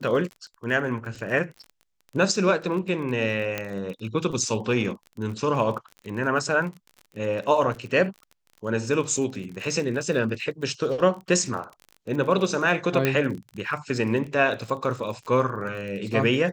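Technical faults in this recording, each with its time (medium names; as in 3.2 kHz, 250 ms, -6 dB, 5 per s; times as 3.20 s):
crackle 33 per s -33 dBFS
3.58 s: pop -12 dBFS
13.05 s: pop -8 dBFS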